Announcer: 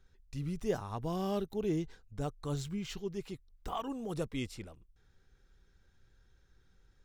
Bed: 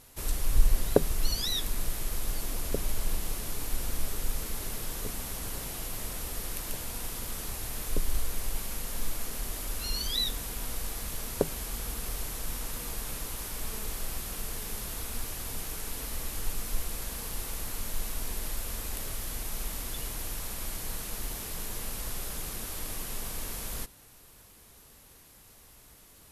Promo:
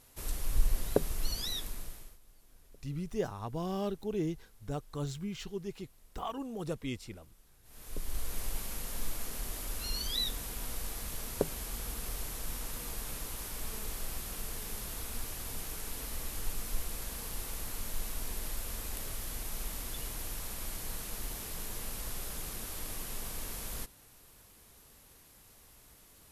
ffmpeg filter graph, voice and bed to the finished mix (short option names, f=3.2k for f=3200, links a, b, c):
-filter_complex "[0:a]adelay=2500,volume=-0.5dB[a];[1:a]volume=20dB,afade=t=out:st=1.48:d=0.7:silence=0.0668344,afade=t=in:st=7.63:d=0.76:silence=0.0530884[b];[a][b]amix=inputs=2:normalize=0"